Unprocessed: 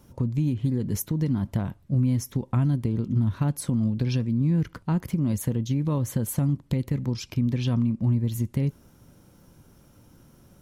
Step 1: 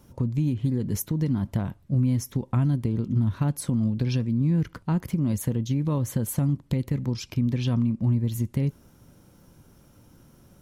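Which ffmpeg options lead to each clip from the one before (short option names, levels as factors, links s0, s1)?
-af anull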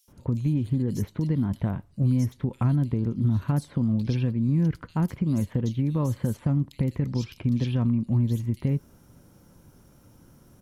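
-filter_complex "[0:a]acrossover=split=4600[s0][s1];[s1]acompressor=threshold=0.00447:ratio=4:attack=1:release=60[s2];[s0][s2]amix=inputs=2:normalize=0,acrossover=split=3100[s3][s4];[s3]adelay=80[s5];[s5][s4]amix=inputs=2:normalize=0"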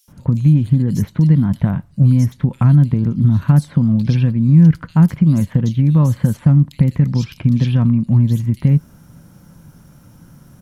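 -af "equalizer=f=160:t=o:w=0.67:g=8,equalizer=f=400:t=o:w=0.67:g=-6,equalizer=f=1600:t=o:w=0.67:g=3,volume=2.37"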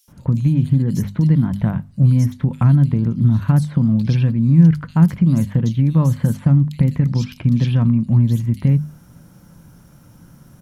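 -af "bandreject=f=50:t=h:w=6,bandreject=f=100:t=h:w=6,bandreject=f=150:t=h:w=6,bandreject=f=200:t=h:w=6,bandreject=f=250:t=h:w=6,volume=0.891"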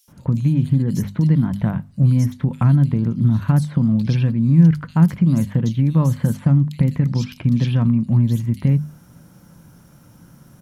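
-af "lowshelf=f=74:g=-7"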